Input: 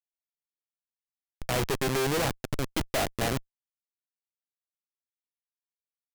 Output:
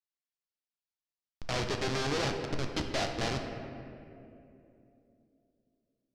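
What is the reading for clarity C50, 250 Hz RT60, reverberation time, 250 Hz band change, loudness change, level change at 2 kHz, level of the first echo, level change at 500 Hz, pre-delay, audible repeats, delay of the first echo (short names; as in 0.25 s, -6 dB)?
5.5 dB, 3.9 s, 2.8 s, -3.5 dB, -4.0 dB, -3.0 dB, none, -4.0 dB, 9 ms, none, none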